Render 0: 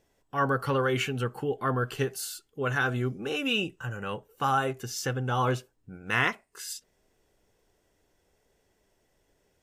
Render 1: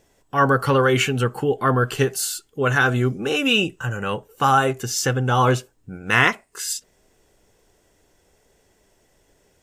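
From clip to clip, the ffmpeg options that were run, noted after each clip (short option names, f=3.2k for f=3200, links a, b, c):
-af "equalizer=f=7.5k:t=o:w=0.61:g=4,volume=9dB"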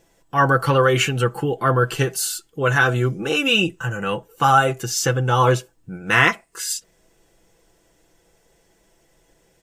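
-af "aecho=1:1:6:0.52"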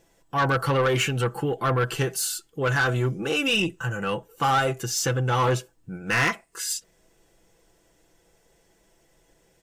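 -af "asoftclip=type=tanh:threshold=-14dB,volume=-2.5dB"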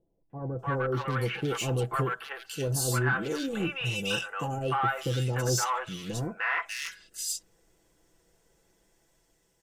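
-filter_complex "[0:a]dynaudnorm=f=160:g=11:m=5dB,acrossover=split=660|2600[a][b][c];[b]adelay=300[d];[c]adelay=590[e];[a][d][e]amix=inputs=3:normalize=0,volume=-8.5dB"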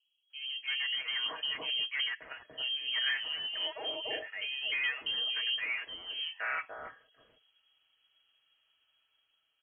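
-af "acrusher=bits=7:mode=log:mix=0:aa=0.000001,lowpass=f=2.8k:t=q:w=0.5098,lowpass=f=2.8k:t=q:w=0.6013,lowpass=f=2.8k:t=q:w=0.9,lowpass=f=2.8k:t=q:w=2.563,afreqshift=-3300,volume=-5.5dB"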